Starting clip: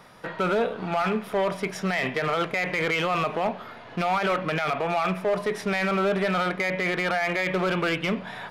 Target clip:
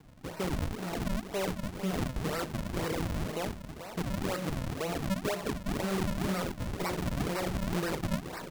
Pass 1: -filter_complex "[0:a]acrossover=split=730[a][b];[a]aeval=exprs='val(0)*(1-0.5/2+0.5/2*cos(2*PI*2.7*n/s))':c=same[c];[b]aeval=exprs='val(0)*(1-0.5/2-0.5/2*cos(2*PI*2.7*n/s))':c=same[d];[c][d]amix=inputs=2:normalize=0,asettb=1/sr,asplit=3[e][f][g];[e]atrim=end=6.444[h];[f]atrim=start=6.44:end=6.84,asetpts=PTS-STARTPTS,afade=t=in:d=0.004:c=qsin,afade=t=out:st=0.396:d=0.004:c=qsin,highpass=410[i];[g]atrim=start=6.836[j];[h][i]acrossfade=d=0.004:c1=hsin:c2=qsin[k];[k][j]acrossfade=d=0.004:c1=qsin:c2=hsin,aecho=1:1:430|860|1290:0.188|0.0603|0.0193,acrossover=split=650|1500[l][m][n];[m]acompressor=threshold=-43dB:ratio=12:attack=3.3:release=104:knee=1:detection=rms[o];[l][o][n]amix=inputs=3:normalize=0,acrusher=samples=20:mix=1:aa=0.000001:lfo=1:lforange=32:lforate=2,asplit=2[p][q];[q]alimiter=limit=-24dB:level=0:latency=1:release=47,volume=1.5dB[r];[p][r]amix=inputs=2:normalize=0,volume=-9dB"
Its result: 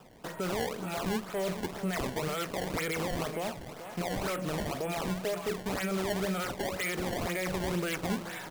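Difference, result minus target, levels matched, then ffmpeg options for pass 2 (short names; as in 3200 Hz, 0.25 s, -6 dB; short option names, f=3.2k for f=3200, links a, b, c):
decimation with a swept rate: distortion -10 dB
-filter_complex "[0:a]acrossover=split=730[a][b];[a]aeval=exprs='val(0)*(1-0.5/2+0.5/2*cos(2*PI*2.7*n/s))':c=same[c];[b]aeval=exprs='val(0)*(1-0.5/2-0.5/2*cos(2*PI*2.7*n/s))':c=same[d];[c][d]amix=inputs=2:normalize=0,asettb=1/sr,asplit=3[e][f][g];[e]atrim=end=6.444[h];[f]atrim=start=6.44:end=6.84,asetpts=PTS-STARTPTS,afade=t=in:d=0.004:c=qsin,afade=t=out:st=0.396:d=0.004:c=qsin,highpass=410[i];[g]atrim=start=6.836[j];[h][i]acrossfade=d=0.004:c1=hsin:c2=qsin[k];[k][j]acrossfade=d=0.004:c1=qsin:c2=hsin,aecho=1:1:430|860|1290:0.188|0.0603|0.0193,acrossover=split=650|1500[l][m][n];[m]acompressor=threshold=-43dB:ratio=12:attack=3.3:release=104:knee=1:detection=rms[o];[l][o][n]amix=inputs=3:normalize=0,acrusher=samples=64:mix=1:aa=0.000001:lfo=1:lforange=102:lforate=2,asplit=2[p][q];[q]alimiter=limit=-24dB:level=0:latency=1:release=47,volume=1.5dB[r];[p][r]amix=inputs=2:normalize=0,volume=-9dB"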